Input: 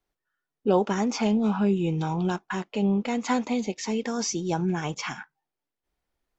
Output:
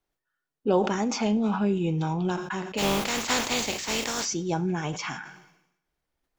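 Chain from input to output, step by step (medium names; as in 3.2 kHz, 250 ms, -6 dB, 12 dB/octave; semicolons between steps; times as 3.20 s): 2.77–4.24 s: spectral contrast reduction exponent 0.37; two-slope reverb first 0.42 s, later 1.7 s, from -21 dB, DRR 14 dB; decay stretcher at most 72 dB/s; trim -1 dB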